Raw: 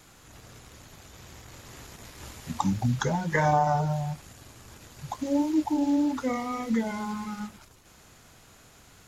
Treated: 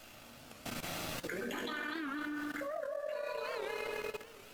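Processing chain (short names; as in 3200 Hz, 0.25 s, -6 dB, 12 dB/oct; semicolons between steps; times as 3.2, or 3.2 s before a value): regenerating reverse delay 0.258 s, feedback 51%, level -1 dB; low shelf 200 Hz -10.5 dB; split-band echo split 960 Hz, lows 0.312 s, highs 0.135 s, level -7.5 dB; shoebox room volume 710 m³, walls furnished, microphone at 3 m; transient shaper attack +7 dB, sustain -7 dB; speed mistake 7.5 ips tape played at 15 ips; reverse; compressor 5:1, threshold -27 dBFS, peak gain reduction 16 dB; reverse; limiter -24 dBFS, peak gain reduction 9 dB; level quantiser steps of 14 dB; high shelf 7500 Hz -7.5 dB; notch 2000 Hz, Q 19; record warp 78 rpm, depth 160 cents; gain +3 dB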